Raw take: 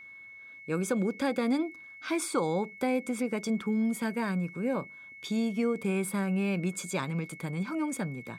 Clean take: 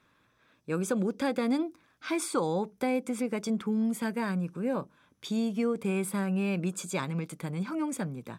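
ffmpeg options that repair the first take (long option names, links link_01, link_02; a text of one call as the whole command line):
ffmpeg -i in.wav -af "bandreject=frequency=2200:width=30" out.wav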